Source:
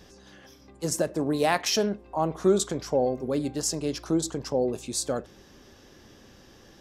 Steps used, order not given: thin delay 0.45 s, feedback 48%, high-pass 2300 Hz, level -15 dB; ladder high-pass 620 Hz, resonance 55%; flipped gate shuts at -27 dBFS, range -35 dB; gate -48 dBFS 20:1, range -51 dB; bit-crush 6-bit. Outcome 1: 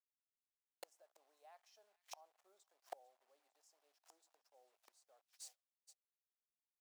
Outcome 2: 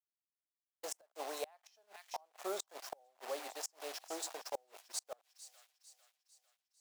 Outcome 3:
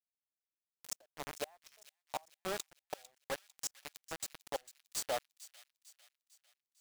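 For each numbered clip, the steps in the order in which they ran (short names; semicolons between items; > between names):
bit-crush > thin delay > gate > flipped gate > ladder high-pass; bit-crush > ladder high-pass > gate > thin delay > flipped gate; ladder high-pass > gate > bit-crush > flipped gate > thin delay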